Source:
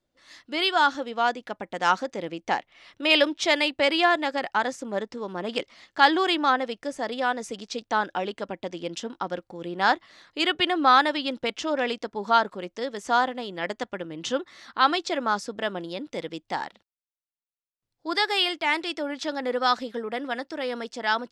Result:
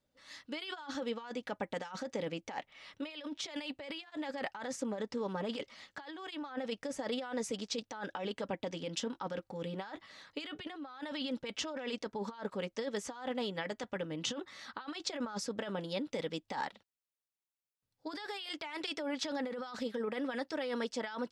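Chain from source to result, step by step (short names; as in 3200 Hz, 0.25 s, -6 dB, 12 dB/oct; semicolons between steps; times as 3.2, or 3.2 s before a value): negative-ratio compressor -32 dBFS, ratio -1; notch comb 350 Hz; gain -6.5 dB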